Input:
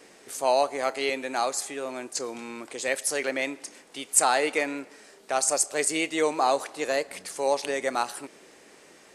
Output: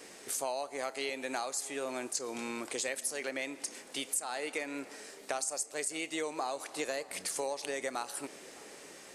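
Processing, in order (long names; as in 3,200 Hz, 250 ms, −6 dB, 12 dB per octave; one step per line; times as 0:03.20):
high-shelf EQ 4,400 Hz +6 dB
downward compressor 12 to 1, threshold −32 dBFS, peak gain reduction 22.5 dB
on a send: tape delay 611 ms, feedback 75%, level −20.5 dB, low-pass 1,500 Hz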